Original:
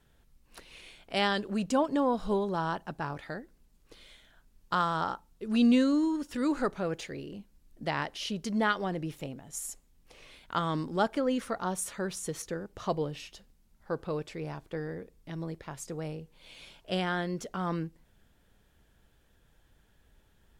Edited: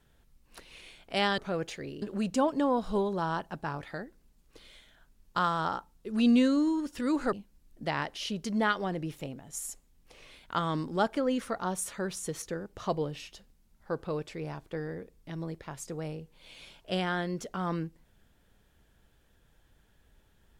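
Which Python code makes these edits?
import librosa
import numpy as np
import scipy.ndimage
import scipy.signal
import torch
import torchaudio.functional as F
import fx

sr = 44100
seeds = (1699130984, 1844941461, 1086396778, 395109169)

y = fx.edit(x, sr, fx.move(start_s=6.69, length_s=0.64, to_s=1.38), tone=tone)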